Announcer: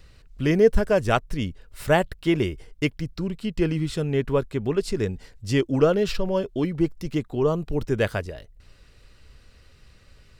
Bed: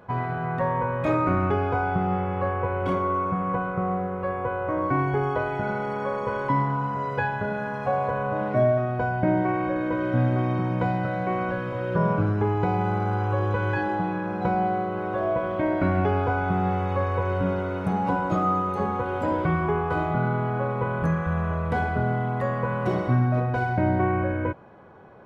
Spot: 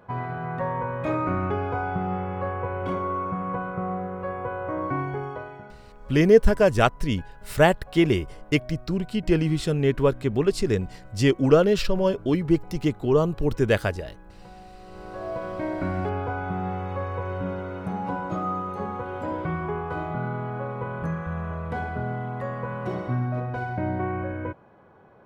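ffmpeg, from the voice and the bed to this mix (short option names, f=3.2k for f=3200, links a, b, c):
-filter_complex "[0:a]adelay=5700,volume=2dB[a];[1:a]volume=15dB,afade=t=out:st=4.85:d=0.91:silence=0.1,afade=t=in:st=14.78:d=0.7:silence=0.125893[b];[a][b]amix=inputs=2:normalize=0"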